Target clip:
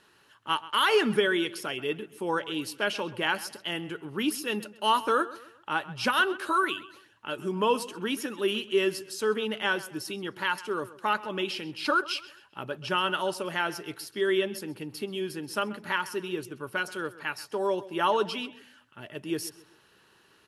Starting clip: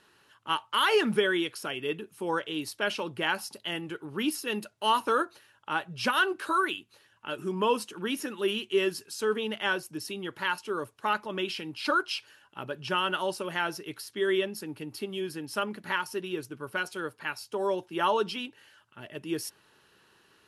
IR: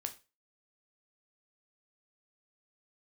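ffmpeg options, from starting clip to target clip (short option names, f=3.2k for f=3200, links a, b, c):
-filter_complex "[0:a]asplit=2[a][b];[b]adelay=131,lowpass=f=4.4k:p=1,volume=-17dB,asplit=2[c][d];[d]adelay=131,lowpass=f=4.4k:p=1,volume=0.39,asplit=2[e][f];[f]adelay=131,lowpass=f=4.4k:p=1,volume=0.39[g];[a][c][e][g]amix=inputs=4:normalize=0,volume=1dB"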